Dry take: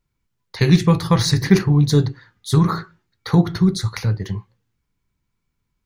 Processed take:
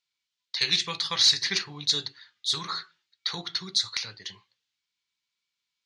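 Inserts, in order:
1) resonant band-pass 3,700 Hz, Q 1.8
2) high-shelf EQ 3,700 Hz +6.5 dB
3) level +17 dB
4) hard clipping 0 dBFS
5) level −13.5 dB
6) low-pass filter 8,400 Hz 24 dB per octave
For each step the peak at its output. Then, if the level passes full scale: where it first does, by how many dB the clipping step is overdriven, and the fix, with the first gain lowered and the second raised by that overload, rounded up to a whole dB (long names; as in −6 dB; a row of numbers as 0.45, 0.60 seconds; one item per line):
−13.0, −9.0, +8.0, 0.0, −13.5, −11.5 dBFS
step 3, 8.0 dB
step 3 +9 dB, step 5 −5.5 dB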